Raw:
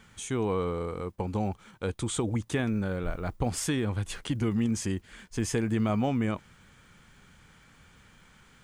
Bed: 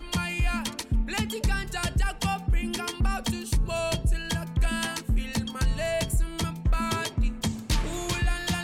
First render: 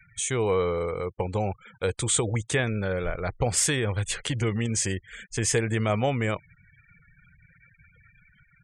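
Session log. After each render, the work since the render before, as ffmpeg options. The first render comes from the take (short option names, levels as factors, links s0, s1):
-af "equalizer=f=125:t=o:w=1:g=5,equalizer=f=250:t=o:w=1:g=-7,equalizer=f=500:t=o:w=1:g=8,equalizer=f=2000:t=o:w=1:g=8,equalizer=f=4000:t=o:w=1:g=4,equalizer=f=8000:t=o:w=1:g=11,afftfilt=real='re*gte(hypot(re,im),0.00794)':imag='im*gte(hypot(re,im),0.00794)':win_size=1024:overlap=0.75"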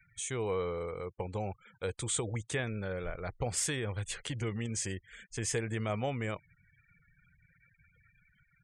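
-af "volume=0.355"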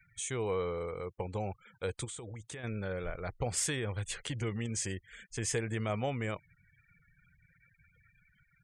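-filter_complex "[0:a]asplit=3[s0][s1][s2];[s0]afade=t=out:st=2.04:d=0.02[s3];[s1]acompressor=threshold=0.00891:ratio=6:attack=3.2:release=140:knee=1:detection=peak,afade=t=in:st=2.04:d=0.02,afade=t=out:st=2.63:d=0.02[s4];[s2]afade=t=in:st=2.63:d=0.02[s5];[s3][s4][s5]amix=inputs=3:normalize=0"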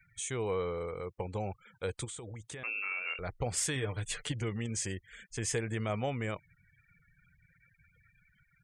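-filter_complex "[0:a]asettb=1/sr,asplit=3[s0][s1][s2];[s0]atrim=end=2.634[s3];[s1]atrim=start=2.63:end=3.19,asetpts=PTS-STARTPTS,afade=t=in:d=0.004:c=qsin,afade=t=out:st=0.556:d=0.004:c=qsin,lowpass=f=2400:t=q:w=0.5098,lowpass=f=2400:t=q:w=0.6013,lowpass=f=2400:t=q:w=0.9,lowpass=f=2400:t=q:w=2.563,afreqshift=-2800[s4];[s2]atrim=start=3.186[s5];[s3][s4]acrossfade=d=0.004:c1=hsin:c2=qsin[s6];[s6][s5]acrossfade=d=0.004:c1=qsin:c2=hsin,asettb=1/sr,asplit=3[s7][s8][s9];[s7]atrim=end=3.754[s10];[s8]atrim=start=3.75:end=4.32,asetpts=PTS-STARTPTS,afade=t=in:d=0.004:c=qsin,afade=t=out:st=0.566:d=0.004:c=qsin,aecho=1:1:6.7:0.65,atrim=end_sample=25137[s11];[s9]atrim=start=4.316[s12];[s10][s11]acrossfade=d=0.004:c1=hsin:c2=qsin[s13];[s13][s12]acrossfade=d=0.004:c1=qsin:c2=hsin"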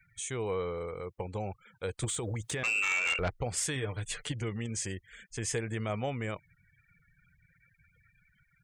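-filter_complex "[0:a]asplit=3[s0][s1][s2];[s0]afade=t=out:st=2.02:d=0.02[s3];[s1]aeval=exprs='0.0562*sin(PI/2*2*val(0)/0.0562)':c=same,afade=t=in:st=2.02:d=0.02,afade=t=out:st=3.28:d=0.02[s4];[s2]afade=t=in:st=3.28:d=0.02[s5];[s3][s4][s5]amix=inputs=3:normalize=0"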